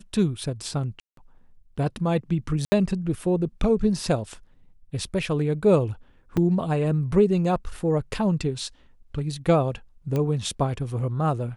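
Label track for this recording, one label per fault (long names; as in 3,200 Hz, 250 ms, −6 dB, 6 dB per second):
1.000000	1.170000	drop-out 173 ms
2.650000	2.720000	drop-out 70 ms
6.370000	6.380000	drop-out 5 ms
10.160000	10.160000	click −15 dBFS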